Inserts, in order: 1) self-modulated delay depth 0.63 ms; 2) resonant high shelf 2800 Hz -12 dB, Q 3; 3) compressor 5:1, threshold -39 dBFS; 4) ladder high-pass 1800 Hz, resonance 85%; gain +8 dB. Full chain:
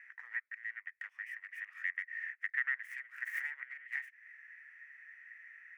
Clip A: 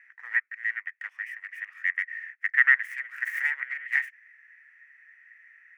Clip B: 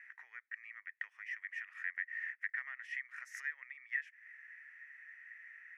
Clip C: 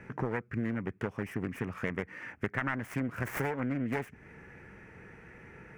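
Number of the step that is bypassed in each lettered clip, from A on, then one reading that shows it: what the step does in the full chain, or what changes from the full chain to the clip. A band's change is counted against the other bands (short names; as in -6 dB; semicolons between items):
3, mean gain reduction 7.0 dB; 1, momentary loudness spread change -4 LU; 4, crest factor change -2.5 dB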